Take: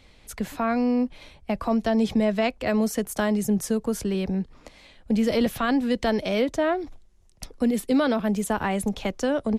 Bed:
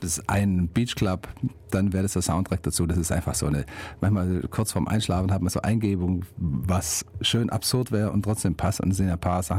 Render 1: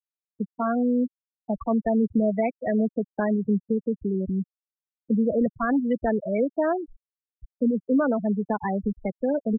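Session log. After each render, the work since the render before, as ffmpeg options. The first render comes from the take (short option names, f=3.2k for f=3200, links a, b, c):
-af "afftfilt=real='re*gte(hypot(re,im),0.158)':imag='im*gte(hypot(re,im),0.158)':win_size=1024:overlap=0.75"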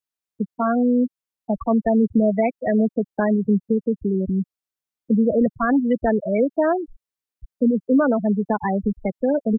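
-af "volume=4.5dB"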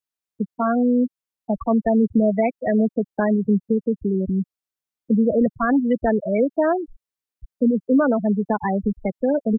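-af anull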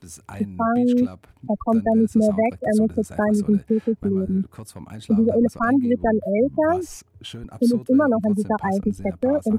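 -filter_complex "[1:a]volume=-13dB[a];[0:a][a]amix=inputs=2:normalize=0"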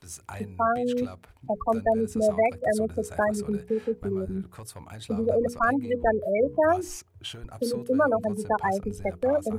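-af "equalizer=f=220:t=o:w=1.2:g=-11.5,bandreject=f=60:t=h:w=6,bandreject=f=120:t=h:w=6,bandreject=f=180:t=h:w=6,bandreject=f=240:t=h:w=6,bandreject=f=300:t=h:w=6,bandreject=f=360:t=h:w=6,bandreject=f=420:t=h:w=6,bandreject=f=480:t=h:w=6"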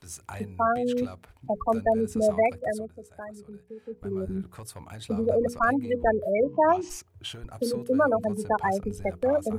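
-filter_complex "[0:a]asplit=3[a][b][c];[a]afade=t=out:st=6.43:d=0.02[d];[b]highpass=f=110:w=0.5412,highpass=f=110:w=1.3066,equalizer=f=200:t=q:w=4:g=5,equalizer=f=530:t=q:w=4:g=-5,equalizer=f=960:t=q:w=4:g=9,equalizer=f=1.5k:t=q:w=4:g=-7,equalizer=f=2.8k:t=q:w=4:g=7,lowpass=f=6.3k:w=0.5412,lowpass=f=6.3k:w=1.3066,afade=t=in:st=6.43:d=0.02,afade=t=out:st=6.89:d=0.02[e];[c]afade=t=in:st=6.89:d=0.02[f];[d][e][f]amix=inputs=3:normalize=0,asplit=3[g][h][i];[g]atrim=end=2.92,asetpts=PTS-STARTPTS,afade=t=out:st=2.49:d=0.43:silence=0.16788[j];[h]atrim=start=2.92:end=3.83,asetpts=PTS-STARTPTS,volume=-15.5dB[k];[i]atrim=start=3.83,asetpts=PTS-STARTPTS,afade=t=in:d=0.43:silence=0.16788[l];[j][k][l]concat=n=3:v=0:a=1"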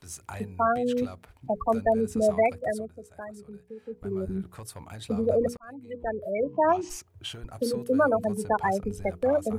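-filter_complex "[0:a]asettb=1/sr,asplit=3[a][b][c];[a]atrim=end=7.774[d];[b]atrim=start=7.77:end=8.43,asetpts=PTS-STARTPTS,afade=t=in:d=0.004:c=qsin,afade=t=out:st=0.656:d=0.004:c=qsin,highshelf=f=8.4k:g=5[e];[c]atrim=start=8.426[f];[d][e]acrossfade=d=0.004:c1=hsin:c2=qsin[g];[g][f]acrossfade=d=0.004:c1=qsin:c2=hsin,asplit=2[h][i];[h]atrim=end=5.57,asetpts=PTS-STARTPTS,afade=t=out:st=5.566:d=0.004:c=hsin[j];[i]atrim=start=5.57,asetpts=PTS-STARTPTS,afade=t=in:d=1.29[k];[j][k]concat=n=2:v=0:a=1"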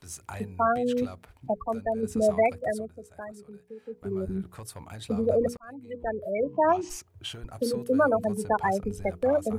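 -filter_complex "[0:a]asettb=1/sr,asplit=3[a][b][c];[a]atrim=end=3.324[d];[b]atrim=start=3.32:end=4.06,asetpts=PTS-STARTPTS,afade=t=in:d=0.004:c=qsin,afade=t=out:st=0.736:d=0.004:c=qsin,highpass=f=190:p=1[e];[c]atrim=start=4.056[f];[d][e]acrossfade=d=0.004:c1=hsin:c2=qsin[g];[g][f]acrossfade=d=0.004:c1=qsin:c2=hsin,asplit=3[h][i][j];[h]atrim=end=1.542[k];[i]atrim=start=1.538:end=2.032,asetpts=PTS-STARTPTS,volume=-5.5dB[l];[j]atrim=start=2.028[m];[k][l]acrossfade=d=0.004:c1=hsin:c2=hsin[n];[n][m]acrossfade=d=0.004:c1=hsin:c2=hsin"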